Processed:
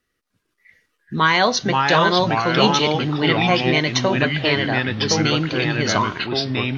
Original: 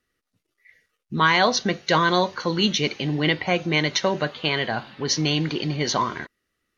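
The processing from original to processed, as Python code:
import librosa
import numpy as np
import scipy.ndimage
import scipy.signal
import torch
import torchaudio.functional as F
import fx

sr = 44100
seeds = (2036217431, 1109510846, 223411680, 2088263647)

y = fx.echo_pitch(x, sr, ms=302, semitones=-3, count=2, db_per_echo=-3.0)
y = y * 10.0 ** (2.0 / 20.0)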